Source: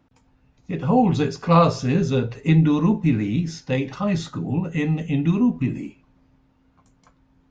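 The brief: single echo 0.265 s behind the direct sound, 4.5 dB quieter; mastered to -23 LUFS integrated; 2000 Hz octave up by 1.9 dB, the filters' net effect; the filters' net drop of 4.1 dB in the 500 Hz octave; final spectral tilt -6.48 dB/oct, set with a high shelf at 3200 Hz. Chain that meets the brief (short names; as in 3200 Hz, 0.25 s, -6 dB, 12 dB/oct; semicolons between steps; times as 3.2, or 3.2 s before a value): bell 500 Hz -5 dB; bell 2000 Hz +4 dB; high shelf 3200 Hz -3.5 dB; echo 0.265 s -4.5 dB; gain -2 dB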